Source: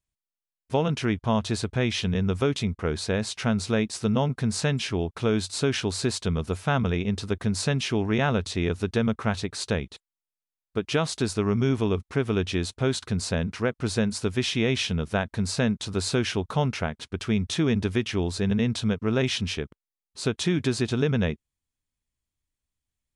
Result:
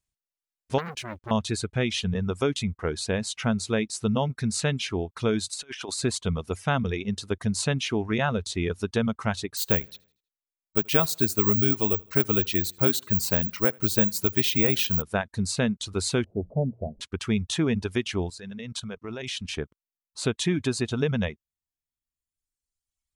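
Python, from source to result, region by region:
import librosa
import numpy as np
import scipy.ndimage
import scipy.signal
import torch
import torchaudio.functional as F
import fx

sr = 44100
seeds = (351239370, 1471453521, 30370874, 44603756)

y = fx.chain(x, sr, fx.law_mismatch(coded='A'),
    fx.transformer_sat(knee_hz=1700.0), at=(0.78, 1.31))
y = fx.chain(y, sr, fx.highpass(hz=700.0, slope=6),
    fx.over_compress(threshold_db=-34.0, ratio=-0.5), at=(5.48, 5.99))
y = fx.chain(y, sr, fx.echo_feedback(ms=80, feedback_pct=44, wet_db=-17),
    fx.resample_bad(factor=2, down='none', up='zero_stuff'), at=(9.57, 15.02))
y = fx.chain(y, sr, fx.zero_step(step_db=-39.0),
    fx.ellip_lowpass(hz=650.0, order=4, stop_db=60),
    fx.hum_notches(base_hz=60, count=3), at=(16.24, 17.01))
y = fx.chain(y, sr, fx.low_shelf(hz=380.0, db=-5.0),
    fx.level_steps(step_db=11), at=(18.3, 19.54))
y = fx.dynamic_eq(y, sr, hz=5300.0, q=3.0, threshold_db=-46.0, ratio=4.0, max_db=-5)
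y = fx.dereverb_blind(y, sr, rt60_s=1.6)
y = fx.peak_eq(y, sr, hz=6900.0, db=4.0, octaves=1.6)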